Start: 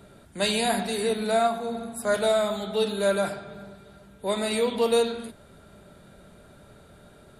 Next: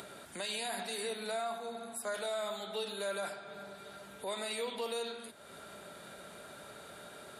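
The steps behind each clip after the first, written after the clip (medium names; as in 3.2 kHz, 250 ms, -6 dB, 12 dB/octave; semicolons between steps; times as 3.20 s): high-pass 810 Hz 6 dB/octave; upward compressor, threshold -32 dBFS; peak limiter -23 dBFS, peak gain reduction 8.5 dB; trim -5.5 dB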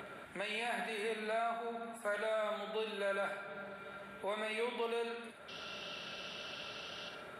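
painted sound noise, 5.48–7.09 s, 2.6–6 kHz -43 dBFS; resonant high shelf 3.5 kHz -13.5 dB, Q 1.5; feedback echo behind a high-pass 63 ms, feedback 50%, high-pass 2 kHz, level -4.5 dB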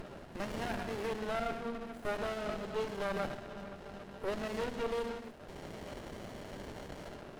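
upward compressor, threshold -48 dBFS; sliding maximum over 33 samples; trim +4.5 dB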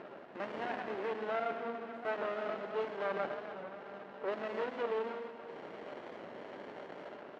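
band-pass 320–2400 Hz; feedback delay 285 ms, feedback 56%, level -12 dB; warped record 45 rpm, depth 100 cents; trim +1 dB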